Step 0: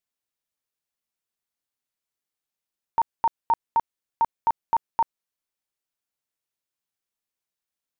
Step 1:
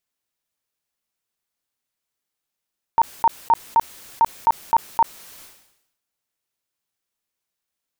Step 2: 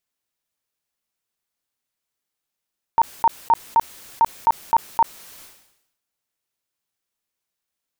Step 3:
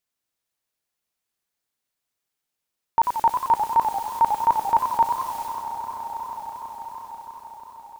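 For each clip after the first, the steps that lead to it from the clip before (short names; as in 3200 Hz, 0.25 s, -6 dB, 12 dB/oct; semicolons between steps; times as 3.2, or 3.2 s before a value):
sustainer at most 71 dB/s; gain +5 dB
nothing audible
swelling echo 0.163 s, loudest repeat 5, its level -17 dB; warbling echo 93 ms, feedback 62%, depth 178 cents, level -6.5 dB; gain -1.5 dB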